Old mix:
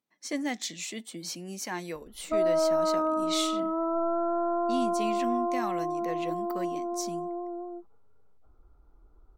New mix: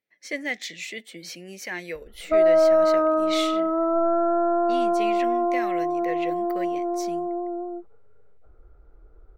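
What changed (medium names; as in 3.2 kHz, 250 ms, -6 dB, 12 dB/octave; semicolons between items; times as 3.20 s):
background +7.0 dB; master: add graphic EQ 250/500/1000/2000/8000 Hz -7/+8/-11/+12/-6 dB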